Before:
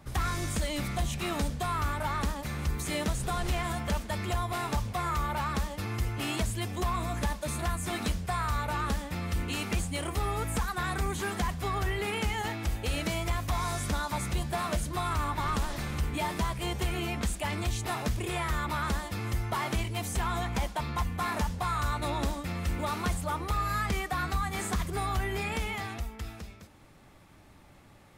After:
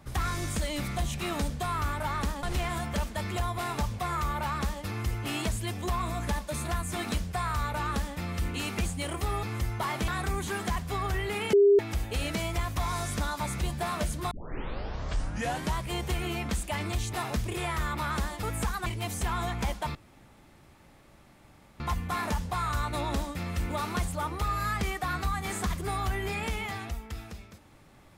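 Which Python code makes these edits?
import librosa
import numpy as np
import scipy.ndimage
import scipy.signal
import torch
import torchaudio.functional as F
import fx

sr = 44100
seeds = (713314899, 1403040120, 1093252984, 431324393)

y = fx.edit(x, sr, fx.cut(start_s=2.43, length_s=0.94),
    fx.swap(start_s=10.37, length_s=0.43, other_s=19.15, other_length_s=0.65),
    fx.bleep(start_s=12.25, length_s=0.26, hz=403.0, db=-15.5),
    fx.tape_start(start_s=15.03, length_s=1.47),
    fx.insert_room_tone(at_s=20.89, length_s=1.85), tone=tone)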